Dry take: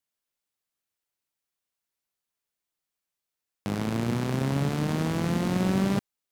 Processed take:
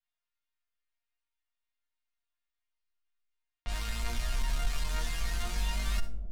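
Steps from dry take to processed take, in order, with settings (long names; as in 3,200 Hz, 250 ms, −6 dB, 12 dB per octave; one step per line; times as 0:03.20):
sub-octave generator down 2 octaves, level +4 dB
low-pass that shuts in the quiet parts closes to 2,500 Hz, open at −22 dBFS
guitar amp tone stack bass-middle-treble 10-0-10
hum removal 115.3 Hz, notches 31
in parallel at +3 dB: speech leveller 0.5 s
on the sum: resonators tuned to a chord A#3 sus4, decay 0.28 s
sine wavefolder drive 8 dB, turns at −21.5 dBFS
on a send: bucket-brigade delay 268 ms, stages 1,024, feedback 67%, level −10 dB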